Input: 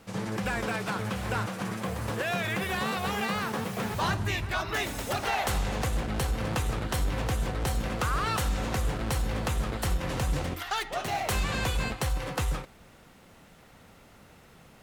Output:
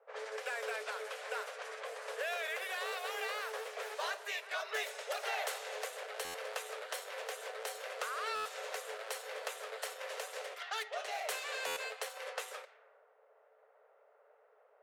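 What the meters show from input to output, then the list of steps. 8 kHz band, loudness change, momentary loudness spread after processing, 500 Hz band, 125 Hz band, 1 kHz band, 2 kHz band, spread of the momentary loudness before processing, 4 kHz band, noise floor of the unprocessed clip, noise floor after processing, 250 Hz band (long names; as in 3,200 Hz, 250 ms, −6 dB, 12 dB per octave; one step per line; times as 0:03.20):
−7.5 dB, −9.5 dB, 5 LU, −6.5 dB, below −40 dB, −9.5 dB, −6.5 dB, 4 LU, −7.0 dB, −55 dBFS, −67 dBFS, below −35 dB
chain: low-pass that shuts in the quiet parts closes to 650 Hz, open at −27 dBFS
Chebyshev high-pass with heavy ripple 420 Hz, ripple 6 dB
dynamic equaliser 1,300 Hz, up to −6 dB, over −45 dBFS, Q 0.73
buffer that repeats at 0:06.24/0:08.35/0:11.66, samples 512, times 8
level −1 dB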